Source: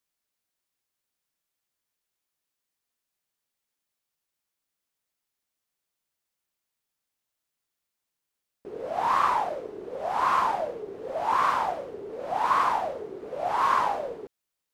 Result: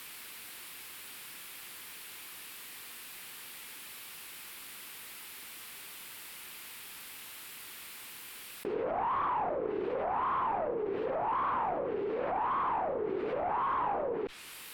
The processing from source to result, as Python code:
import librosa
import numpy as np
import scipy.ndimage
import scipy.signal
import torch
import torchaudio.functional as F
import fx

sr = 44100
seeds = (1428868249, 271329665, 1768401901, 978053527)

y = fx.tube_stage(x, sr, drive_db=25.0, bias=0.3)
y = fx.low_shelf(y, sr, hz=190.0, db=-9.5)
y = fx.env_lowpass_down(y, sr, base_hz=990.0, full_db=-32.0)
y = fx.graphic_eq_15(y, sr, hz=(630, 2500, 6300), db=(-8, 4, -9))
y = fx.env_flatten(y, sr, amount_pct=70)
y = y * librosa.db_to_amplitude(2.0)